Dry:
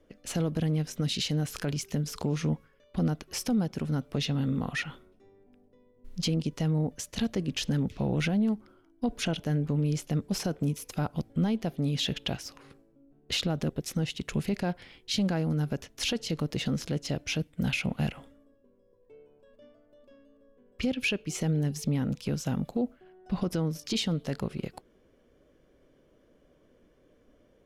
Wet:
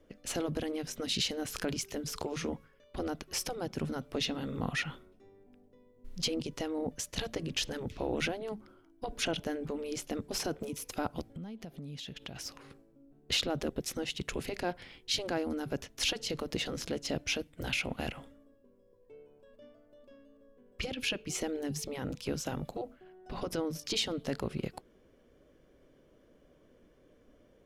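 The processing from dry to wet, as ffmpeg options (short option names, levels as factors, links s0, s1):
-filter_complex "[0:a]asplit=3[s0][s1][s2];[s0]afade=t=out:st=11.31:d=0.02[s3];[s1]acompressor=threshold=0.01:ratio=10:attack=3.2:release=140:knee=1:detection=peak,afade=t=in:st=11.31:d=0.02,afade=t=out:st=12.35:d=0.02[s4];[s2]afade=t=in:st=12.35:d=0.02[s5];[s3][s4][s5]amix=inputs=3:normalize=0,afftfilt=real='re*lt(hypot(re,im),0.251)':imag='im*lt(hypot(re,im),0.251)':win_size=1024:overlap=0.75"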